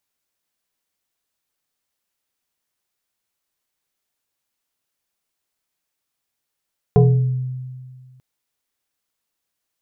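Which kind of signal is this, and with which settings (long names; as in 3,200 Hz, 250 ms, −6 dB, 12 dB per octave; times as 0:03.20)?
two-operator FM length 1.24 s, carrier 128 Hz, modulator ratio 2.31, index 1.4, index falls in 0.78 s exponential, decay 1.89 s, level −7 dB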